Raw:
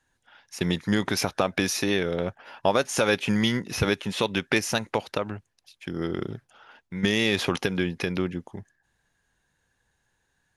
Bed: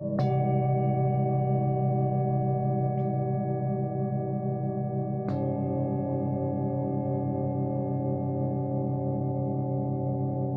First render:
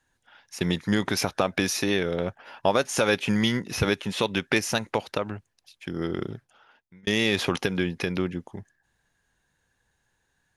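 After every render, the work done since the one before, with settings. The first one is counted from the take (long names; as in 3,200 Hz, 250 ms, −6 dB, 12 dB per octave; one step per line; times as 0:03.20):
0:06.23–0:07.07: fade out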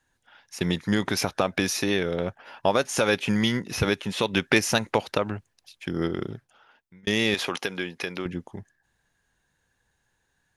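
0:04.33–0:06.08: clip gain +3 dB
0:07.34–0:08.26: high-pass filter 550 Hz 6 dB per octave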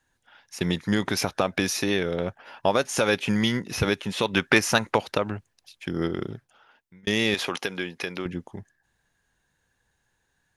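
0:04.24–0:04.96: dynamic equaliser 1,200 Hz, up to +6 dB, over −36 dBFS, Q 1.3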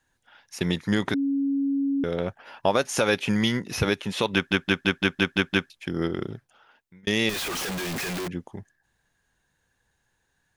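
0:01.14–0:02.04: beep over 277 Hz −21.5 dBFS
0:04.34: stutter in place 0.17 s, 8 plays
0:07.29–0:08.28: sign of each sample alone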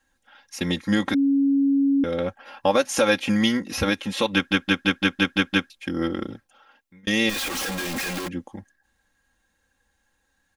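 comb filter 3.7 ms, depth 83%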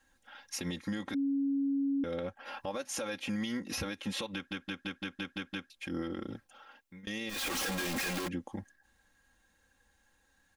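downward compressor 3 to 1, threshold −34 dBFS, peak gain reduction 14.5 dB
brickwall limiter −26.5 dBFS, peak gain reduction 9.5 dB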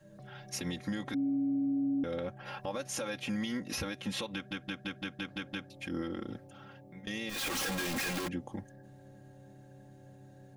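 mix in bed −25.5 dB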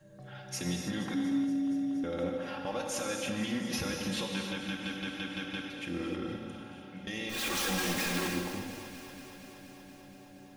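on a send: delay that swaps between a low-pass and a high-pass 118 ms, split 2,100 Hz, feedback 88%, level −13 dB
on the sum: reverb whose tail is shaped and stops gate 340 ms flat, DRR 1.5 dB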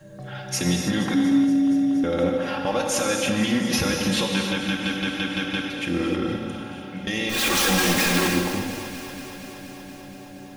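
level +11.5 dB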